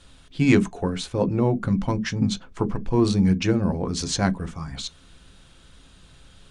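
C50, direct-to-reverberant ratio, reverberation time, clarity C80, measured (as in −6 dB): 27.0 dB, 10.0 dB, non-exponential decay, 39.5 dB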